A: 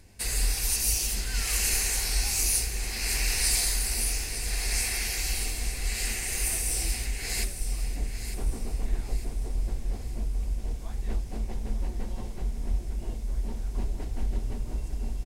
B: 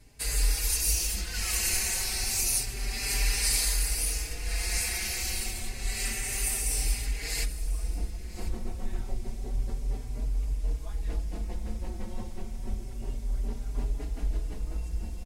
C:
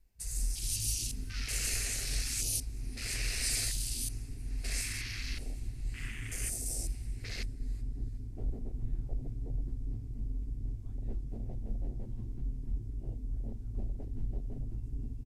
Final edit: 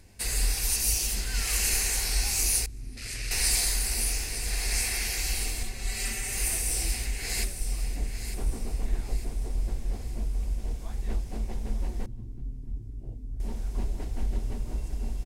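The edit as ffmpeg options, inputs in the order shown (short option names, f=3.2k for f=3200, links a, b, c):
-filter_complex "[2:a]asplit=2[a][b];[0:a]asplit=4[c][d][e][f];[c]atrim=end=2.662[g];[a]atrim=start=2.658:end=3.312[h];[d]atrim=start=3.308:end=5.632[i];[1:a]atrim=start=5.628:end=6.372[j];[e]atrim=start=6.368:end=12.062[k];[b]atrim=start=12.058:end=13.402[l];[f]atrim=start=13.398[m];[g][h]acrossfade=d=0.004:c1=hsin:c2=hsin[n];[n][i]acrossfade=d=0.004:c1=hsin:c2=hsin[o];[o][j]acrossfade=d=0.004:c1=hsin:c2=hsin[p];[p][k]acrossfade=d=0.004:c1=hsin:c2=hsin[q];[q][l]acrossfade=d=0.004:c1=hsin:c2=hsin[r];[r][m]acrossfade=d=0.004:c1=hsin:c2=hsin"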